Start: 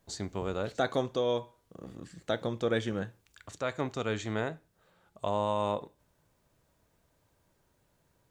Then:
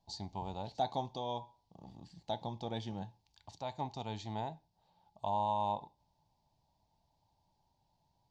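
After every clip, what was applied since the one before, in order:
drawn EQ curve 180 Hz 0 dB, 500 Hz −11 dB, 870 Hz +12 dB, 1,300 Hz −19 dB, 4,700 Hz +5 dB, 8,200 Hz −13 dB
level −5.5 dB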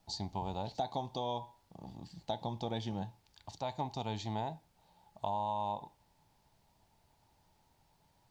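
downward compressor 4 to 1, threshold −37 dBFS, peak gain reduction 8.5 dB
background noise pink −80 dBFS
level +4.5 dB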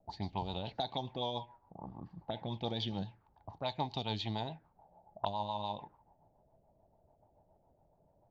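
rotating-speaker cabinet horn 7 Hz
envelope-controlled low-pass 610–4,500 Hz up, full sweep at −35.5 dBFS
level +1.5 dB

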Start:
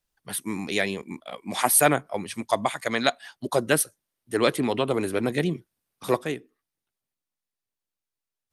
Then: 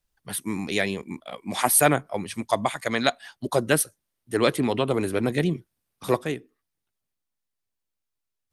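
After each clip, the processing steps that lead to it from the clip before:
low-shelf EQ 120 Hz +7.5 dB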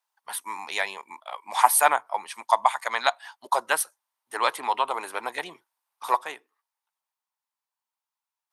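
high-pass with resonance 920 Hz, resonance Q 4.9
level −2.5 dB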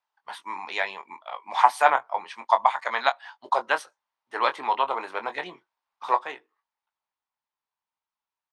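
high-frequency loss of the air 160 metres
double-tracking delay 22 ms −9 dB
level +1 dB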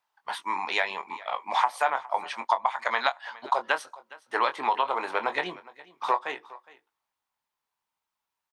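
downward compressor 6 to 1, threshold −26 dBFS, peak gain reduction 15 dB
single-tap delay 413 ms −20.5 dB
level +5 dB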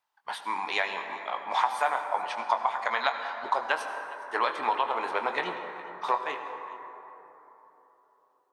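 convolution reverb RT60 3.7 s, pre-delay 68 ms, DRR 6.5 dB
level −2 dB

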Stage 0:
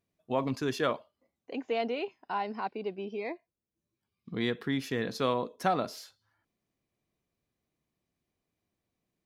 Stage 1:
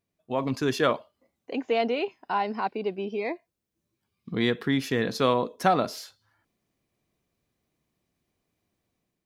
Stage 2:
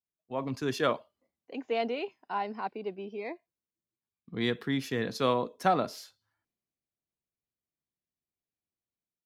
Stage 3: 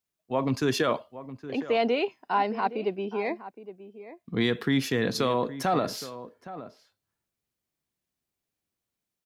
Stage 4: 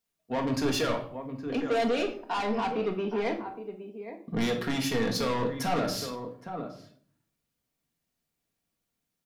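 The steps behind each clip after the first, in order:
automatic gain control gain up to 6 dB
multiband upward and downward expander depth 40%; level −5.5 dB
brickwall limiter −23 dBFS, peak gain reduction 11 dB; slap from a distant wall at 140 metres, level −14 dB; level +8 dB
soft clipping −28 dBFS, distortion −7 dB; rectangular room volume 650 cubic metres, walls furnished, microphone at 1.7 metres; level +1.5 dB

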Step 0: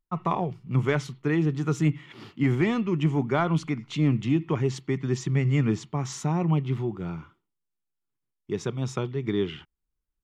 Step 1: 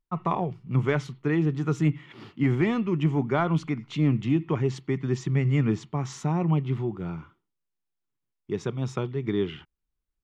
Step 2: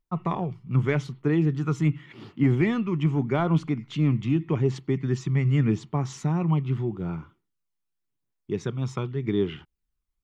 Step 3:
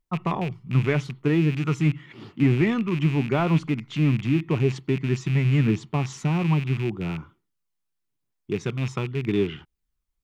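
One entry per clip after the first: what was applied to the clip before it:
high-shelf EQ 5,300 Hz −8.5 dB
phase shifter 0.84 Hz, delay 1 ms, feedback 34%; level −1 dB
loose part that buzzes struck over −29 dBFS, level −27 dBFS; level +1.5 dB

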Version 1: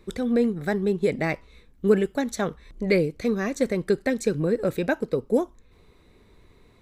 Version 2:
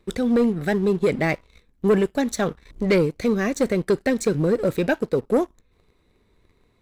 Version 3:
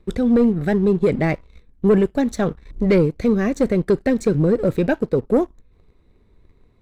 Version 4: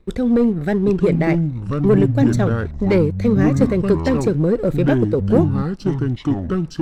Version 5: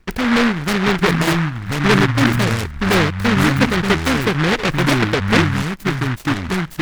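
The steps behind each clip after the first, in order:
leveller curve on the samples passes 2; level −3 dB
spectral tilt −2 dB per octave
delay with pitch and tempo change per echo 757 ms, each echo −6 semitones, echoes 2
short delay modulated by noise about 1,400 Hz, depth 0.33 ms

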